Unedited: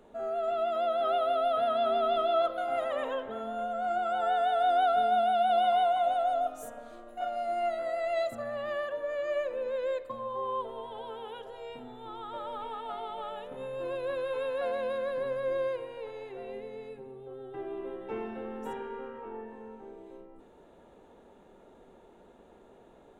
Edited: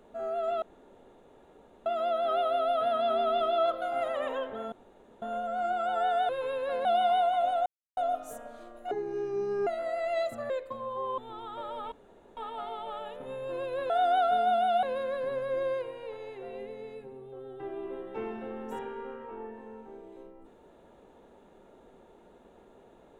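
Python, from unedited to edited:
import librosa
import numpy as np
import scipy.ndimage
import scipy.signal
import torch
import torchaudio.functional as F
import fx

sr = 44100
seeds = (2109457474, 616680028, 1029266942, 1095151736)

y = fx.edit(x, sr, fx.insert_room_tone(at_s=0.62, length_s=1.24),
    fx.insert_room_tone(at_s=3.48, length_s=0.5),
    fx.swap(start_s=4.55, length_s=0.93, other_s=14.21, other_length_s=0.56),
    fx.insert_silence(at_s=6.29, length_s=0.31),
    fx.speed_span(start_s=7.23, length_s=0.44, speed=0.58),
    fx.cut(start_s=8.5, length_s=1.39),
    fx.cut(start_s=10.57, length_s=1.37),
    fx.insert_room_tone(at_s=12.68, length_s=0.45), tone=tone)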